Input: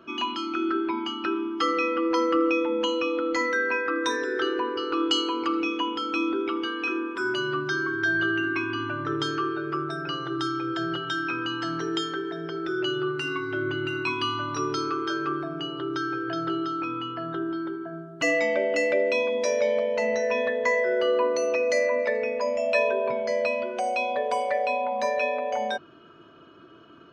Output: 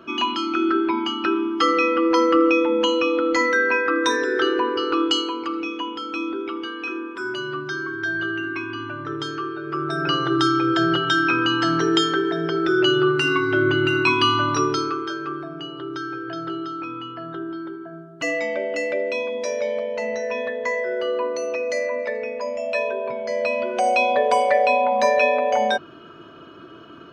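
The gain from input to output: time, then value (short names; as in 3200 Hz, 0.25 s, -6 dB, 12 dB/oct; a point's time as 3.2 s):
4.9 s +6 dB
5.44 s -1 dB
9.61 s -1 dB
10.06 s +9.5 dB
14.49 s +9.5 dB
15.16 s -1 dB
23.17 s -1 dB
23.88 s +8 dB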